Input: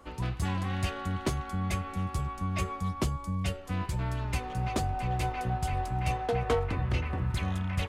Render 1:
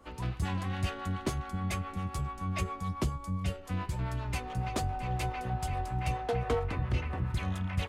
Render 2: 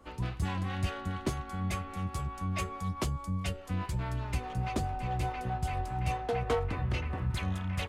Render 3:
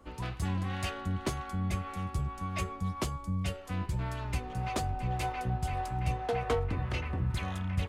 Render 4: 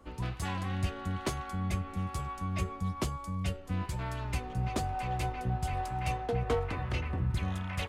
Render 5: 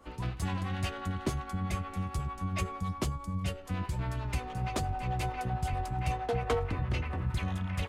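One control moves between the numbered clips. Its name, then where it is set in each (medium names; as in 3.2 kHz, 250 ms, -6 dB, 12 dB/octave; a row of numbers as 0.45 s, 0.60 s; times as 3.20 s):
harmonic tremolo, rate: 7.2 Hz, 4.8 Hz, 1.8 Hz, 1.1 Hz, 11 Hz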